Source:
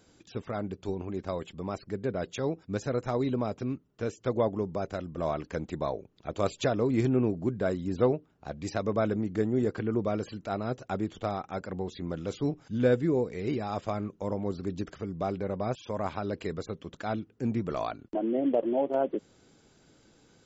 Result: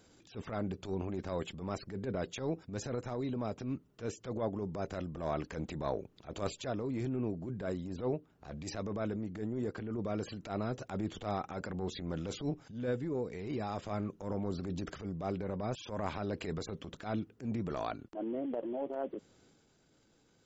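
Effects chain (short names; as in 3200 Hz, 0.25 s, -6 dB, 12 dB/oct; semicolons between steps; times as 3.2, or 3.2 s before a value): transient shaper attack -11 dB, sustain +4 dB; vocal rider within 4 dB 0.5 s; gain -5 dB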